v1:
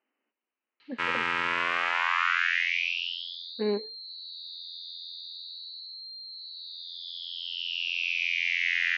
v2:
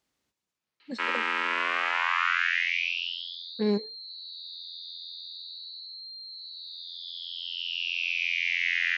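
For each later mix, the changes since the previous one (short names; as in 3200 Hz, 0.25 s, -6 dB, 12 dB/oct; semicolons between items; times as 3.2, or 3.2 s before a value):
speech: remove brick-wall FIR band-pass 210–3100 Hz; background: add steep high-pass 220 Hz 48 dB/oct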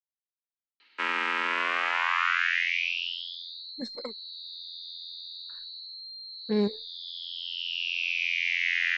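speech: entry +2.90 s; master: remove HPF 120 Hz 12 dB/oct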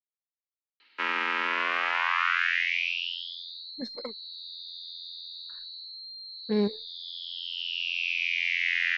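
master: add LPF 6000 Hz 24 dB/oct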